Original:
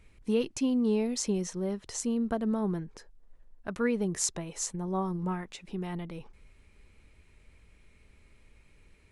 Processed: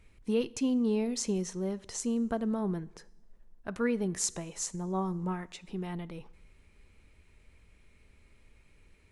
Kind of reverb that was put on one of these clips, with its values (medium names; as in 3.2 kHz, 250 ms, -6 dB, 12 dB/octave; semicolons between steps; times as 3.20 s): two-slope reverb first 0.8 s, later 2.8 s, from -21 dB, DRR 18.5 dB; trim -1.5 dB